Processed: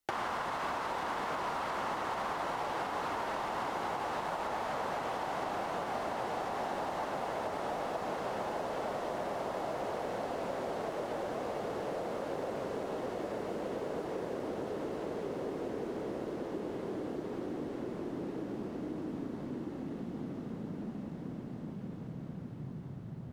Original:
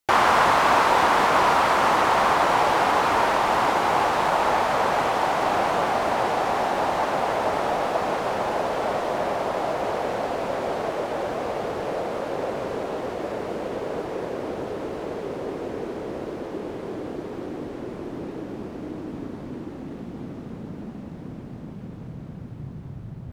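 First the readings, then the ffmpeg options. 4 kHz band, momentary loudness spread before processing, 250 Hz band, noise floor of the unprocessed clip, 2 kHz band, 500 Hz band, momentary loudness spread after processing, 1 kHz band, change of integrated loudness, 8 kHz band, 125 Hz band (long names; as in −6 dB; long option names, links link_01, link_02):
−15.0 dB, 18 LU, −8.0 dB, −38 dBFS, −15.5 dB, −11.5 dB, 6 LU, −15.0 dB, −14.0 dB, −14.5 dB, −8.5 dB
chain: -filter_complex "[0:a]lowshelf=frequency=200:gain=8,bandreject=frequency=2400:width=25,alimiter=limit=-12.5dB:level=0:latency=1:release=142,acrossover=split=150|5500[link_01][link_02][link_03];[link_01]acompressor=threshold=-53dB:ratio=4[link_04];[link_02]acompressor=threshold=-28dB:ratio=4[link_05];[link_03]acompressor=threshold=-54dB:ratio=4[link_06];[link_04][link_05][link_06]amix=inputs=3:normalize=0,volume=-6dB"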